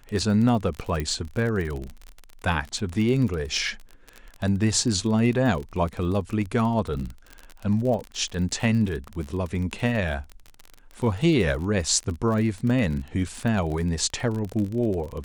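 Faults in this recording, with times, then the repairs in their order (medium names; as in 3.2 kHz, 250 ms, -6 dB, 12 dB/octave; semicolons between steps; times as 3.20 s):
crackle 36 per s -29 dBFS
1.00 s: pop -15 dBFS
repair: de-click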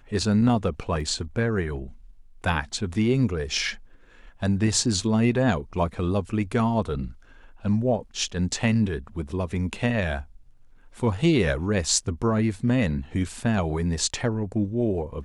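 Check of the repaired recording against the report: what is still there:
1.00 s: pop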